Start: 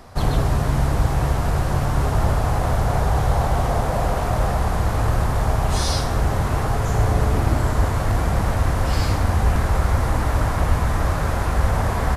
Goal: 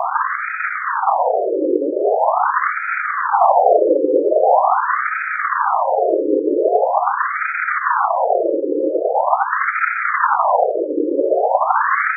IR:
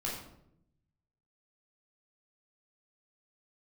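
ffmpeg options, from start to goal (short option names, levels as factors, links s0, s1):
-filter_complex "[0:a]bass=f=250:g=8,treble=f=4000:g=9,acrossover=split=160[s0][s1];[s1]acrusher=bits=6:mix=0:aa=0.000001[s2];[s0][s2]amix=inputs=2:normalize=0,alimiter=level_in=14.1:limit=0.891:release=50:level=0:latency=1,afftfilt=real='re*between(b*sr/1024,390*pow(1800/390,0.5+0.5*sin(2*PI*0.43*pts/sr))/1.41,390*pow(1800/390,0.5+0.5*sin(2*PI*0.43*pts/sr))*1.41)':imag='im*between(b*sr/1024,390*pow(1800/390,0.5+0.5*sin(2*PI*0.43*pts/sr))/1.41,390*pow(1800/390,0.5+0.5*sin(2*PI*0.43*pts/sr))*1.41)':win_size=1024:overlap=0.75,volume=2.37"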